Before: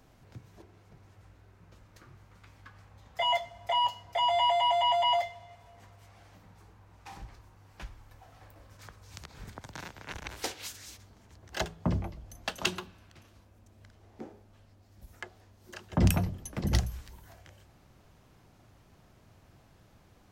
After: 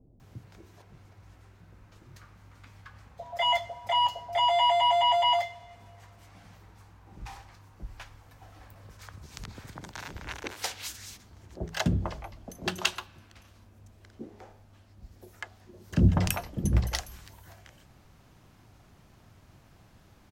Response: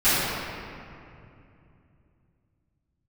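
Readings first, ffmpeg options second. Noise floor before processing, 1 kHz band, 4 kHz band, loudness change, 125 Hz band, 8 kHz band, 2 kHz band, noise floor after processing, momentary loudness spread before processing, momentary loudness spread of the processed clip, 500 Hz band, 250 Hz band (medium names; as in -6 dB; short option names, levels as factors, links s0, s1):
-61 dBFS, +2.5 dB, +3.0 dB, +2.5 dB, +3.0 dB, +3.0 dB, +3.0 dB, -58 dBFS, 24 LU, 23 LU, +2.0 dB, +2.5 dB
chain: -filter_complex "[0:a]acrossover=split=510[s0][s1];[s1]adelay=200[s2];[s0][s2]amix=inputs=2:normalize=0,volume=1.41"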